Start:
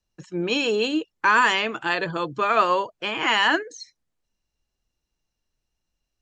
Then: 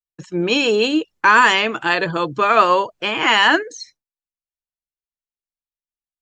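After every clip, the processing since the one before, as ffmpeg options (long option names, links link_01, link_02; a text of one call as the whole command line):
ffmpeg -i in.wav -af "agate=range=-33dB:threshold=-46dB:ratio=3:detection=peak,volume=6dB" out.wav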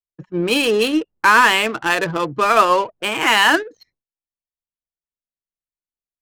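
ffmpeg -i in.wav -af "adynamicsmooth=sensitivity=2.5:basefreq=870" out.wav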